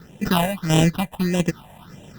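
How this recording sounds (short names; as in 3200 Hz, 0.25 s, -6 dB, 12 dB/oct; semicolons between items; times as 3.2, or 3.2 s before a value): aliases and images of a low sample rate 2200 Hz, jitter 0%; phasing stages 6, 1.6 Hz, lowest notch 340–1300 Hz; random-step tremolo 4.3 Hz, depth 55%; Opus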